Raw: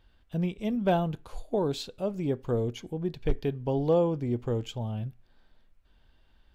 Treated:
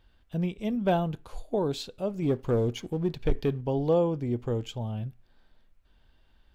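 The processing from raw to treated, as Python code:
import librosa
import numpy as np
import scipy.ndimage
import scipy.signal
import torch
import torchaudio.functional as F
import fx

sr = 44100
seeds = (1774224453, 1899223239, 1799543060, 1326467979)

y = fx.leveller(x, sr, passes=1, at=(2.22, 3.61))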